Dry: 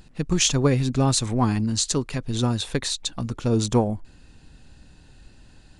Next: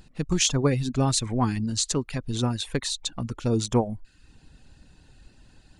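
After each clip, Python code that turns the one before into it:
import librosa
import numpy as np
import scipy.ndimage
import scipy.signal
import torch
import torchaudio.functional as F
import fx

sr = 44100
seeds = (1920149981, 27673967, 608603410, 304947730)

y = fx.dereverb_blind(x, sr, rt60_s=0.52)
y = F.gain(torch.from_numpy(y), -2.0).numpy()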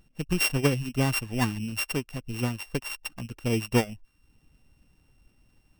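y = np.r_[np.sort(x[:len(x) // 16 * 16].reshape(-1, 16), axis=1).ravel(), x[len(x) // 16 * 16:]]
y = fx.upward_expand(y, sr, threshold_db=-35.0, expansion=1.5)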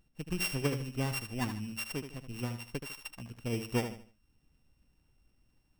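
y = fx.echo_feedback(x, sr, ms=76, feedback_pct=31, wet_db=-9)
y = F.gain(torch.from_numpy(y), -8.5).numpy()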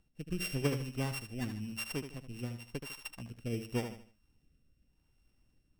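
y = fx.rotary(x, sr, hz=0.9)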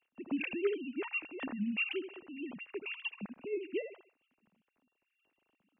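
y = fx.sine_speech(x, sr)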